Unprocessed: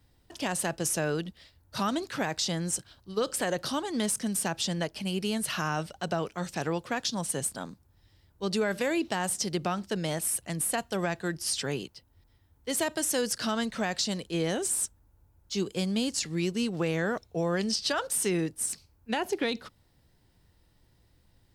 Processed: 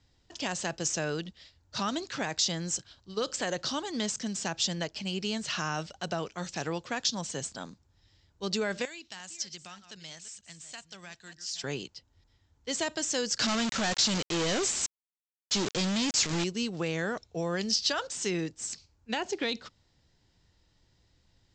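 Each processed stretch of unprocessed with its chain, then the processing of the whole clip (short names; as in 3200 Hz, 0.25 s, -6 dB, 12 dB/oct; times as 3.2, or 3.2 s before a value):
8.85–11.64 reverse delay 0.312 s, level -12 dB + passive tone stack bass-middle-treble 5-5-5
13.39–16.44 high shelf 7700 Hz -5.5 dB + companded quantiser 2-bit
whole clip: steep low-pass 7600 Hz 96 dB/oct; high shelf 2900 Hz +8.5 dB; gain -3.5 dB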